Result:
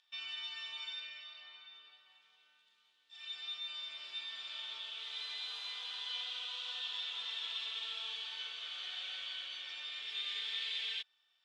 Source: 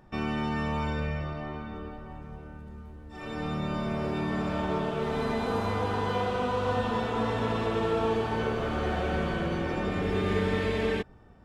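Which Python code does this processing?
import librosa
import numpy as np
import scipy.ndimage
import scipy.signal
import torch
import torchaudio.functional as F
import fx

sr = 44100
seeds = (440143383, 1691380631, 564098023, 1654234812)

y = fx.ladder_bandpass(x, sr, hz=3800.0, resonance_pct=65)
y = y * 10.0 ** (9.0 / 20.0)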